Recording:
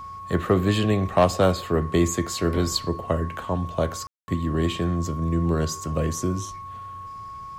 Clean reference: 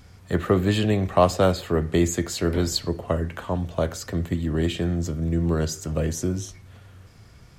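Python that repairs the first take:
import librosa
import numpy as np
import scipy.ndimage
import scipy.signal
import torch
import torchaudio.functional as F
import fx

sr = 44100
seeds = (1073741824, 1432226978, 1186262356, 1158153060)

y = fx.fix_declip(x, sr, threshold_db=-9.0)
y = fx.notch(y, sr, hz=1100.0, q=30.0)
y = fx.fix_ambience(y, sr, seeds[0], print_start_s=7.07, print_end_s=7.57, start_s=4.07, end_s=4.28)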